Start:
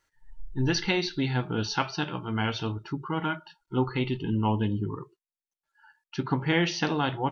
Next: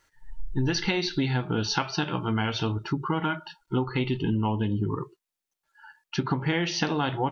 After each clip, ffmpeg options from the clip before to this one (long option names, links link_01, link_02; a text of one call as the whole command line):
ffmpeg -i in.wav -af "acompressor=threshold=-30dB:ratio=6,volume=7.5dB" out.wav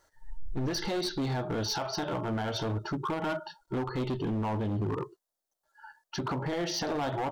ffmpeg -i in.wav -af "equalizer=frequency=160:width_type=o:width=0.67:gain=-5,equalizer=frequency=630:width_type=o:width=0.67:gain=10,equalizer=frequency=2500:width_type=o:width=0.67:gain=-12,alimiter=limit=-19.5dB:level=0:latency=1:release=57,asoftclip=type=hard:threshold=-27.5dB" out.wav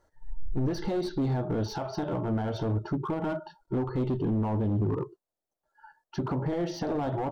ffmpeg -i in.wav -af "tiltshelf=frequency=1100:gain=7.5,volume=-3dB" out.wav